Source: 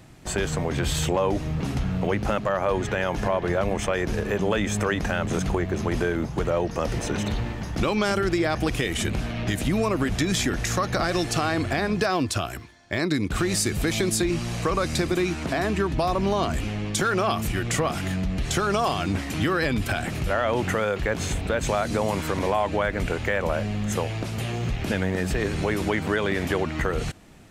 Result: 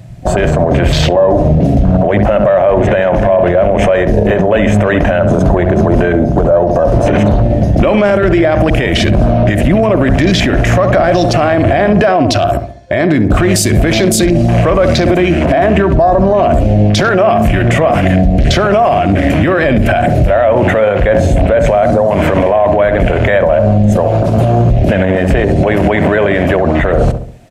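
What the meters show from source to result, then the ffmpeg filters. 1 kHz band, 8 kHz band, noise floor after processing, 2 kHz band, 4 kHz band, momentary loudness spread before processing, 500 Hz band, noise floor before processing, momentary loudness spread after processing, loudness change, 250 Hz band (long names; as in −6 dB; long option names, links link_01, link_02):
+14.0 dB, +6.5 dB, −13 dBFS, +11.5 dB, +9.5 dB, 4 LU, +17.0 dB, −33 dBFS, 2 LU, +15.0 dB, +15.0 dB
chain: -filter_complex "[0:a]afwtdn=0.0224,superequalizer=8b=2.82:10b=0.708,asplit=2[link_01][link_02];[link_02]adelay=68,lowpass=frequency=1200:poles=1,volume=-10dB,asplit=2[link_03][link_04];[link_04]adelay=68,lowpass=frequency=1200:poles=1,volume=0.48,asplit=2[link_05][link_06];[link_06]adelay=68,lowpass=frequency=1200:poles=1,volume=0.48,asplit=2[link_07][link_08];[link_08]adelay=68,lowpass=frequency=1200:poles=1,volume=0.48,asplit=2[link_09][link_10];[link_10]adelay=68,lowpass=frequency=1200:poles=1,volume=0.48[link_11];[link_01][link_03][link_05][link_07][link_09][link_11]amix=inputs=6:normalize=0,alimiter=level_in=22dB:limit=-1dB:release=50:level=0:latency=1,volume=-1dB"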